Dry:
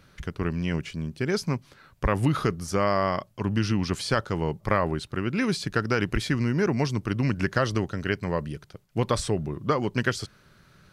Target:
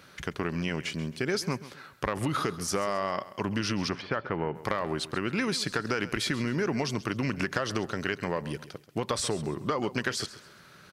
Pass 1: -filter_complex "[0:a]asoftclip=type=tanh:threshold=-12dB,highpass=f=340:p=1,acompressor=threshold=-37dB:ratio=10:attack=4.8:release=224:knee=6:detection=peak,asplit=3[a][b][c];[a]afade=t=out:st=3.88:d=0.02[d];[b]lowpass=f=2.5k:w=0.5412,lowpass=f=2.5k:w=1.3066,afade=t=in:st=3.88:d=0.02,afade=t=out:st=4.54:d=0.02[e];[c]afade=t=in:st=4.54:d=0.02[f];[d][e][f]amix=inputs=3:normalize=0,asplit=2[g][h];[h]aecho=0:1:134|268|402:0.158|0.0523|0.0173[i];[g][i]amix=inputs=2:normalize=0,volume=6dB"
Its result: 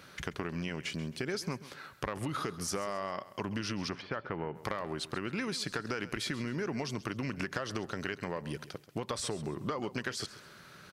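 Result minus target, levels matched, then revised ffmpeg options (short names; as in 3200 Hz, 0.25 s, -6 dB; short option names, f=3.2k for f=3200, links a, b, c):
compressor: peak gain reduction +6.5 dB
-filter_complex "[0:a]asoftclip=type=tanh:threshold=-12dB,highpass=f=340:p=1,acompressor=threshold=-29.5dB:ratio=10:attack=4.8:release=224:knee=6:detection=peak,asplit=3[a][b][c];[a]afade=t=out:st=3.88:d=0.02[d];[b]lowpass=f=2.5k:w=0.5412,lowpass=f=2.5k:w=1.3066,afade=t=in:st=3.88:d=0.02,afade=t=out:st=4.54:d=0.02[e];[c]afade=t=in:st=4.54:d=0.02[f];[d][e][f]amix=inputs=3:normalize=0,asplit=2[g][h];[h]aecho=0:1:134|268|402:0.158|0.0523|0.0173[i];[g][i]amix=inputs=2:normalize=0,volume=6dB"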